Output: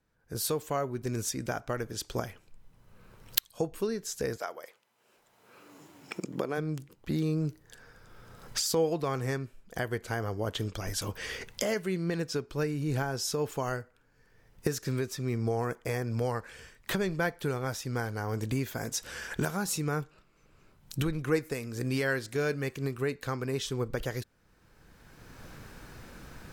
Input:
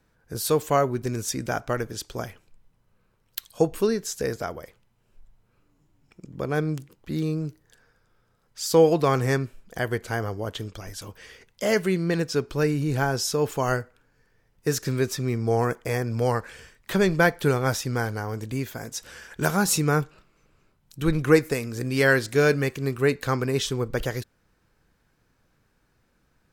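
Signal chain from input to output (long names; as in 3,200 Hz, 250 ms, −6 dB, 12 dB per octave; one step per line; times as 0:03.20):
camcorder AGC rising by 19 dB per second
0:04.37–0:06.57: high-pass filter 570 Hz → 240 Hz 12 dB per octave
level −10.5 dB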